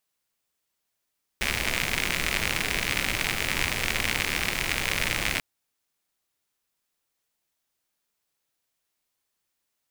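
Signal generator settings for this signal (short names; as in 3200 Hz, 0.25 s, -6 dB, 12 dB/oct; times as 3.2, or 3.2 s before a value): rain from filtered ticks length 3.99 s, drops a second 91, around 2200 Hz, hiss -2.5 dB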